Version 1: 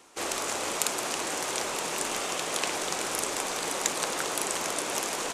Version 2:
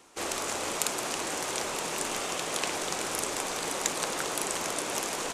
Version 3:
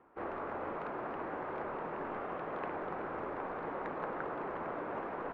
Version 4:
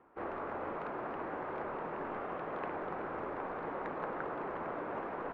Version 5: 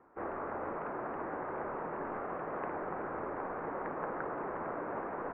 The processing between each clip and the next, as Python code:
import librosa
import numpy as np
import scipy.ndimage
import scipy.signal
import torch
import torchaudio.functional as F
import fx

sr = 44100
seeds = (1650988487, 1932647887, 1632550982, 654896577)

y1 = fx.low_shelf(x, sr, hz=180.0, db=5.0)
y1 = y1 * 10.0 ** (-1.5 / 20.0)
y2 = scipy.signal.sosfilt(scipy.signal.butter(4, 1600.0, 'lowpass', fs=sr, output='sos'), y1)
y2 = y2 * 10.0 ** (-4.0 / 20.0)
y3 = y2
y4 = scipy.signal.sosfilt(scipy.signal.butter(4, 2100.0, 'lowpass', fs=sr, output='sos'), y3)
y4 = y4 * 10.0 ** (1.0 / 20.0)